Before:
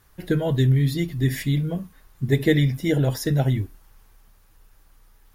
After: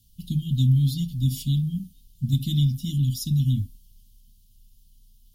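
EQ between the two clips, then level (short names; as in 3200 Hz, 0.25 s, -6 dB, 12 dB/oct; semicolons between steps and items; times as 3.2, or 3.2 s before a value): Chebyshev band-stop 250–3000 Hz, order 5; 0.0 dB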